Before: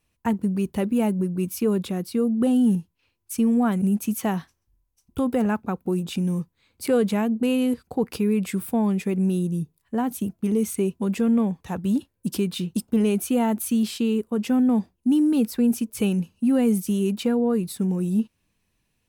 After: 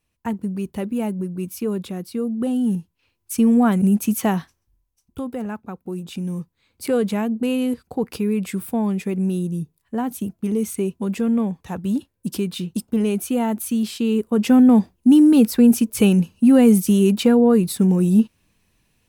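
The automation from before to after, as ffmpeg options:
-af "volume=18.5dB,afade=t=in:st=2.61:d=0.88:silence=0.446684,afade=t=out:st=4.25:d=1.03:silence=0.281838,afade=t=in:st=5.81:d=1.03:silence=0.473151,afade=t=in:st=13.96:d=0.55:silence=0.446684"

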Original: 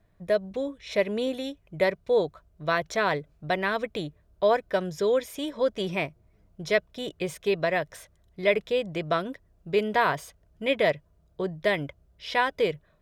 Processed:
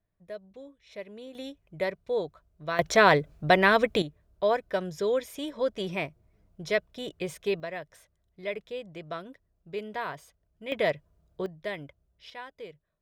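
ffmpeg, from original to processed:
-af "asetnsamples=n=441:p=0,asendcmd='1.35 volume volume -6dB;2.79 volume volume 6.5dB;4.02 volume volume -3dB;7.6 volume volume -11dB;10.72 volume volume -3dB;11.46 volume volume -10dB;12.3 volume volume -18dB',volume=-16dB"

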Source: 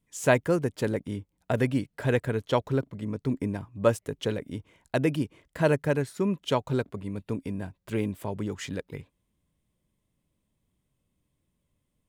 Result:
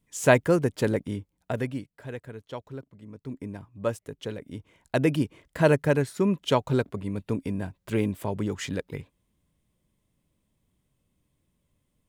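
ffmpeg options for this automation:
-af "volume=18.5dB,afade=t=out:st=0.96:d=0.6:silence=0.473151,afade=t=out:st=1.56:d=0.44:silence=0.354813,afade=t=in:st=3.07:d=0.55:silence=0.446684,afade=t=in:st=4.36:d=0.81:silence=0.375837"

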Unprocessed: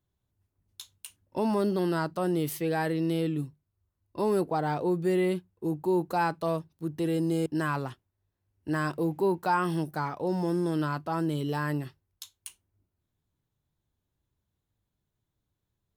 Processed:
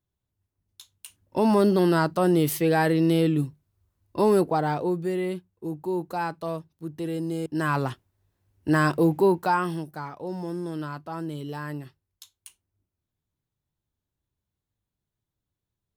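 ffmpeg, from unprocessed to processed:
-af "volume=17dB,afade=t=in:st=0.92:d=0.59:silence=0.298538,afade=t=out:st=4.2:d=0.93:silence=0.354813,afade=t=in:st=7.47:d=0.43:silence=0.316228,afade=t=out:st=9.06:d=0.78:silence=0.251189"

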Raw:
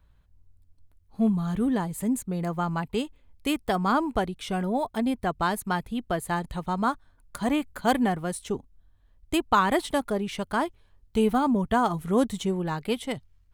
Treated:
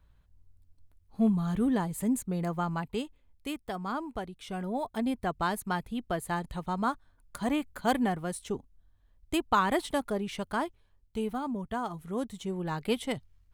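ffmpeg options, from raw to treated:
-af "volume=13.5dB,afade=t=out:st=2.35:d=1.25:silence=0.375837,afade=t=in:st=4.3:d=0.75:silence=0.473151,afade=t=out:st=10.46:d=0.81:silence=0.473151,afade=t=in:st=12.38:d=0.51:silence=0.354813"

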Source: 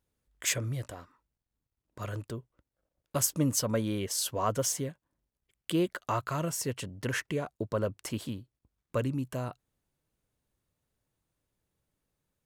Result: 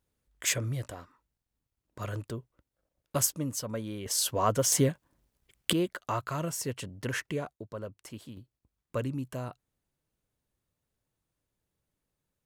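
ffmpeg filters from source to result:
-af "asetnsamples=n=441:p=0,asendcmd='3.32 volume volume -6dB;4.06 volume volume 3dB;4.72 volume volume 10dB;5.73 volume volume -1dB;7.53 volume volume -9dB;8.37 volume volume -2dB',volume=1dB"

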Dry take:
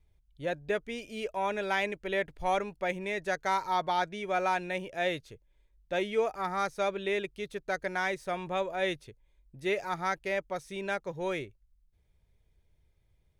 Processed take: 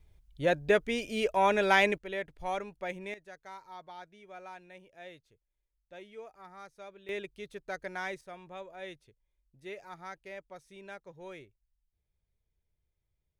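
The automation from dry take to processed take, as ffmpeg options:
-af "asetnsamples=n=441:p=0,asendcmd='1.98 volume volume -5.5dB;3.14 volume volume -18dB;7.09 volume volume -6dB;8.21 volume volume -13dB',volume=6dB"

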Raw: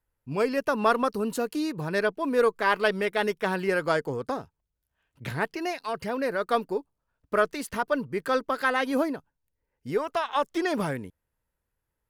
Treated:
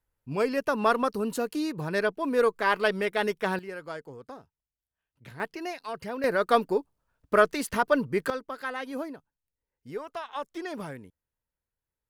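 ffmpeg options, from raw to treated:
-af "asetnsamples=n=441:p=0,asendcmd='3.59 volume volume -13dB;5.4 volume volume -4.5dB;6.24 volume volume 3dB;8.3 volume volume -9dB',volume=-1dB"

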